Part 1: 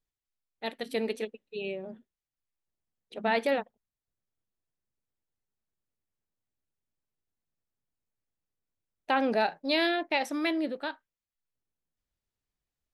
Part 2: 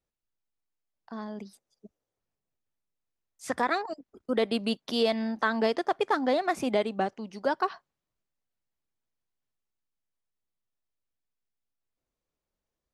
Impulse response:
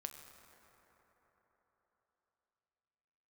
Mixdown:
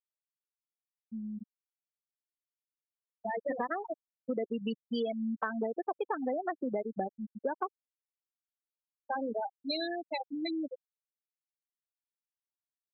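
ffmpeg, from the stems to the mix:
-filter_complex "[0:a]equalizer=frequency=4100:width=4.1:gain=8,acontrast=55,volume=-9dB,afade=type=in:start_time=2.83:duration=0.6:silence=0.334965[link_01];[1:a]volume=2.5dB[link_02];[link_01][link_02]amix=inputs=2:normalize=0,afftfilt=real='re*gte(hypot(re,im),0.158)':imag='im*gte(hypot(re,im),0.158)':win_size=1024:overlap=0.75,acompressor=threshold=-31dB:ratio=5"

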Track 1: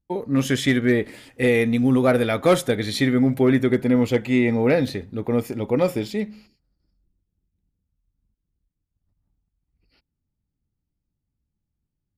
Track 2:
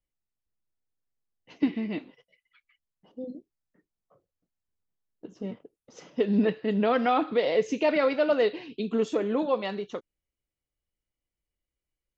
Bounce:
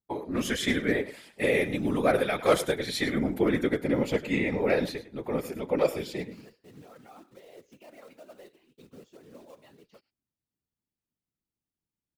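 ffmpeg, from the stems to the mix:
ffmpeg -i stem1.wav -i stem2.wav -filter_complex "[0:a]highpass=frequency=390:poles=1,volume=2dB,asplit=2[link_01][link_02];[link_02]volume=-15dB[link_03];[1:a]alimiter=limit=-19.5dB:level=0:latency=1:release=352,acrusher=bits=3:mode=log:mix=0:aa=0.000001,volume=-15.5dB[link_04];[link_03]aecho=0:1:103:1[link_05];[link_01][link_04][link_05]amix=inputs=3:normalize=0,afftfilt=real='hypot(re,im)*cos(2*PI*random(0))':imag='hypot(re,im)*sin(2*PI*random(1))':win_size=512:overlap=0.75" out.wav

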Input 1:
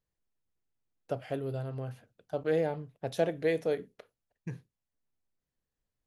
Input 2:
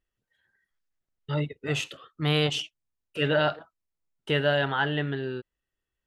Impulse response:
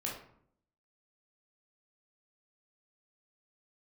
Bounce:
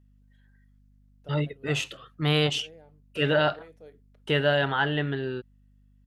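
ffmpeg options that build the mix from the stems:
-filter_complex "[0:a]adelay=150,volume=-5.5dB,afade=type=out:start_time=0.98:duration=0.61:silence=0.316228,afade=type=in:start_time=3.62:duration=0.7:silence=0.473151[link_01];[1:a]volume=1dB[link_02];[link_01][link_02]amix=inputs=2:normalize=0,aeval=exprs='val(0)+0.00126*(sin(2*PI*50*n/s)+sin(2*PI*2*50*n/s)/2+sin(2*PI*3*50*n/s)/3+sin(2*PI*4*50*n/s)/4+sin(2*PI*5*50*n/s)/5)':channel_layout=same"

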